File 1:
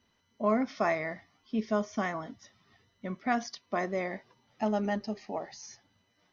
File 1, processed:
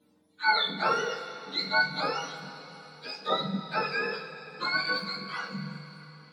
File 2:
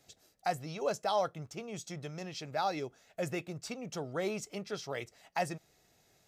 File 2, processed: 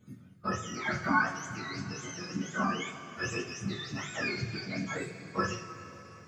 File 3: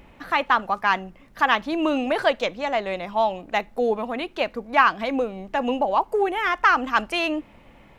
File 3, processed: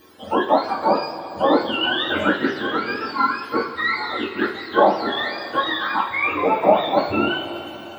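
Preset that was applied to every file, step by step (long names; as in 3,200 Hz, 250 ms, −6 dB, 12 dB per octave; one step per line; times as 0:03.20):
frequency axis turned over on the octave scale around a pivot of 960 Hz
coupled-rooms reverb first 0.3 s, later 4.2 s, from −19 dB, DRR −3.5 dB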